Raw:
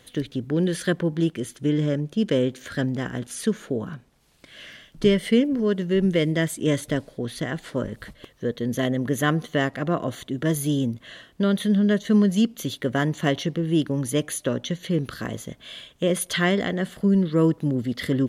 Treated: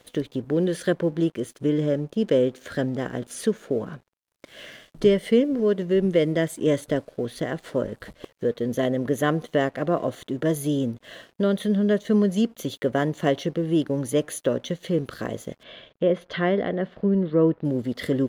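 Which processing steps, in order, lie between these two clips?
bell 530 Hz +8.5 dB 1.6 oct; in parallel at +1 dB: compressor 6:1, threshold -34 dBFS, peak gain reduction 23.5 dB; on the sum: crossover distortion -46.5 dBFS; 15.63–17.65 air absorption 270 m; gain -5.5 dB

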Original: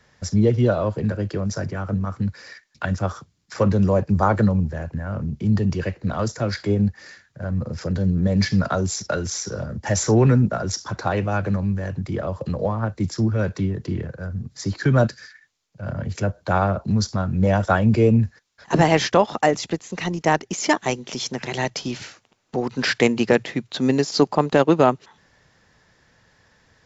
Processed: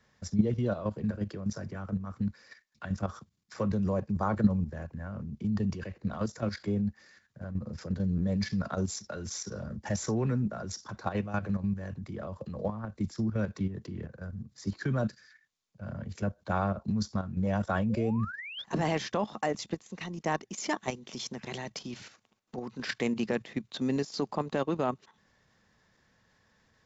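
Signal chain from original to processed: small resonant body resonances 210/1100/3600 Hz, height 7 dB, ringing for 80 ms; painted sound rise, 17.89–18.64, 460–3700 Hz -30 dBFS; level quantiser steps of 10 dB; gain -8 dB

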